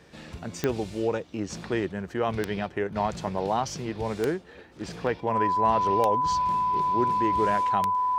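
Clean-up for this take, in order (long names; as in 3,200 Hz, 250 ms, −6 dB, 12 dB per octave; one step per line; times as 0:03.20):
click removal
notch filter 1,000 Hz, Q 30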